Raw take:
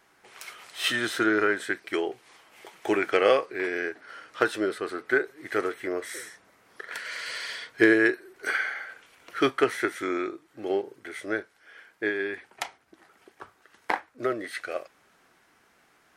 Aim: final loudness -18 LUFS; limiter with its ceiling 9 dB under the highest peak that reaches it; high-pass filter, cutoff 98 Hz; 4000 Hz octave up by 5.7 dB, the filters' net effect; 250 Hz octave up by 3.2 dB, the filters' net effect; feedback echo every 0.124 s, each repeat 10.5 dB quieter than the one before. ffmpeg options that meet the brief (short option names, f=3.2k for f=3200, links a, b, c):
-af "highpass=98,equalizer=f=250:t=o:g=5,equalizer=f=4k:t=o:g=7.5,alimiter=limit=-13dB:level=0:latency=1,aecho=1:1:124|248|372:0.299|0.0896|0.0269,volume=9.5dB"